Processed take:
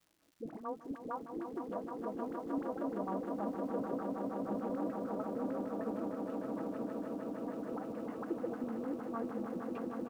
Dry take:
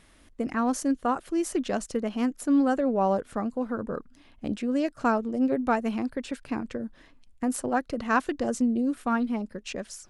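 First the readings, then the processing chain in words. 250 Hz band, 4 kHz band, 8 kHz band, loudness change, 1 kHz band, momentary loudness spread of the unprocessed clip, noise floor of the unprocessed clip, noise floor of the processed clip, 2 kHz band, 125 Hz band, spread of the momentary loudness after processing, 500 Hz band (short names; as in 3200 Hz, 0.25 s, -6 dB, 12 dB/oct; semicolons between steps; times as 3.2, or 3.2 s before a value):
-12.0 dB, under -20 dB, under -25 dB, -11.5 dB, -12.5 dB, 11 LU, -57 dBFS, -52 dBFS, -19.5 dB, -8.0 dB, 5 LU, -9.0 dB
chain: HPF 84 Hz 24 dB/oct; expander -44 dBFS; comb 6.1 ms, depth 59%; auto swell 0.122 s; compressor 3:1, threshold -57 dBFS, peak gain reduction 26.5 dB; LFO low-pass saw down 6.6 Hz 260–1500 Hz; dispersion highs, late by 57 ms, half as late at 590 Hz; crackle 340/s -63 dBFS; on a send: swelling echo 0.155 s, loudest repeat 8, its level -7.5 dB; on the sum: gain +5.5 dB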